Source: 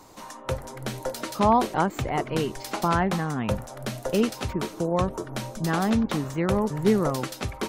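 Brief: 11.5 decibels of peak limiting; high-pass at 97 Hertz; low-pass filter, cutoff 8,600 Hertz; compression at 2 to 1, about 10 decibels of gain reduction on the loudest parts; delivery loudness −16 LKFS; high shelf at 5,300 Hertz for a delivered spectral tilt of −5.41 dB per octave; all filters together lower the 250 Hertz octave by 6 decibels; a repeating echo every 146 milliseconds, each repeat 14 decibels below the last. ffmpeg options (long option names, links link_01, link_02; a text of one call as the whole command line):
ffmpeg -i in.wav -af "highpass=97,lowpass=8600,equalizer=frequency=250:width_type=o:gain=-8,highshelf=frequency=5300:gain=-7,acompressor=threshold=-35dB:ratio=2,alimiter=level_in=6.5dB:limit=-24dB:level=0:latency=1,volume=-6.5dB,aecho=1:1:146|292:0.2|0.0399,volume=24.5dB" out.wav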